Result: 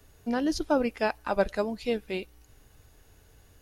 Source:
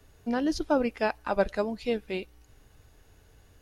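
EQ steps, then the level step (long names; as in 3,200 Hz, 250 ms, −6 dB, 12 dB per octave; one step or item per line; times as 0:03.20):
high-shelf EQ 7,600 Hz +6.5 dB
0.0 dB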